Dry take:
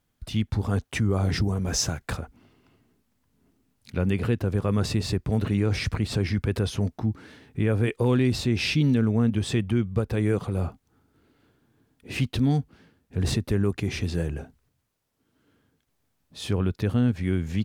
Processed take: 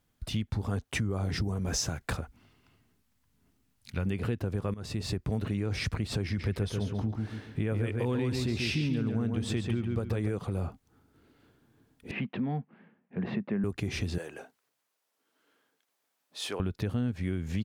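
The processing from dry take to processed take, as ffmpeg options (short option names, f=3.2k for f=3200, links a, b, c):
-filter_complex "[0:a]asettb=1/sr,asplit=3[a][b][c];[a]atrim=end=2.224[d];[b]atrim=start=2.22:end=4.06,asetpts=PTS-STARTPTS,afade=t=in:d=0.004:c=qsin,afade=t=out:st=1.836:d=0.004:c=qsin,equalizer=f=370:t=o:w=2.4:g=-8[e];[c]atrim=start=4.056[f];[d][e]acrossfade=d=0.004:c1=hsin:c2=qsin[g];[g][f]acrossfade=d=0.004:c1=qsin:c2=hsin,asplit=3[h][i][j];[h]afade=t=out:st=6.38:d=0.02[k];[i]asplit=2[l][m];[m]adelay=140,lowpass=f=4.8k:p=1,volume=-4.5dB,asplit=2[n][o];[o]adelay=140,lowpass=f=4.8k:p=1,volume=0.31,asplit=2[p][q];[q]adelay=140,lowpass=f=4.8k:p=1,volume=0.31,asplit=2[r][s];[s]adelay=140,lowpass=f=4.8k:p=1,volume=0.31[t];[l][n][p][r][t]amix=inputs=5:normalize=0,afade=t=in:st=6.38:d=0.02,afade=t=out:st=10.29:d=0.02[u];[j]afade=t=in:st=10.29:d=0.02[v];[k][u][v]amix=inputs=3:normalize=0,asettb=1/sr,asplit=3[w][x][y];[w]atrim=end=12.114[z];[x]atrim=start=12.11:end=13.64,asetpts=PTS-STARTPTS,afade=t=in:d=0.004:c=qsin,afade=t=out:st=1.526:d=0.004:c=qsin,highpass=f=180:w=0.5412,highpass=f=180:w=1.3066,equalizer=f=200:t=q:w=4:g=7,equalizer=f=290:t=q:w=4:g=-9,equalizer=f=440:t=q:w=4:g=-4,equalizer=f=1.4k:t=q:w=4:g=-4,lowpass=f=2.3k:w=0.5412,lowpass=f=2.3k:w=1.3066[aa];[y]atrim=start=13.636[ab];[z][aa]acrossfade=d=0.004:c1=hsin:c2=qsin[ac];[ac][ab]acrossfade=d=0.004:c1=qsin:c2=hsin,asettb=1/sr,asplit=3[ad][ae][af];[ad]atrim=end=14.184[ag];[ae]atrim=start=14.18:end=16.6,asetpts=PTS-STARTPTS,afade=t=in:d=0.004:c=qsin,afade=t=out:st=2.416:d=0.004:c=qsin,highpass=530[ah];[af]atrim=start=16.596[ai];[ag][ah]acrossfade=d=0.004:c1=hsin:c2=qsin[aj];[aj][ai]acrossfade=d=0.004:c1=qsin:c2=hsin,asplit=2[ak][al];[ak]atrim=end=4.74,asetpts=PTS-STARTPTS,afade=t=out:st=4.736:d=0.004:c=hsin:silence=0.11885[am];[al]atrim=start=4.74,asetpts=PTS-STARTPTS,afade=t=in:d=0.58:silence=0.11885[an];[am][an]concat=n=2:v=0:a=1,acompressor=threshold=-28dB:ratio=4"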